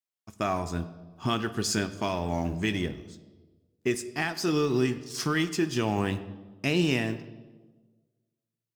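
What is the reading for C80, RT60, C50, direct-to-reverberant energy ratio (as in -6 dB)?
15.5 dB, 1.3 s, 14.0 dB, 11.0 dB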